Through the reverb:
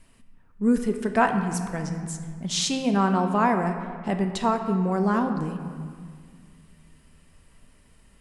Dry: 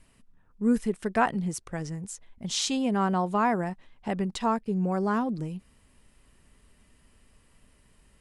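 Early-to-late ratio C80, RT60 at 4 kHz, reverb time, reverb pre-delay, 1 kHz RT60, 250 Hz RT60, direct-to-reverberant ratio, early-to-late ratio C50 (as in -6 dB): 8.0 dB, 1.3 s, 1.9 s, 3 ms, 1.9 s, 2.4 s, 5.5 dB, 7.5 dB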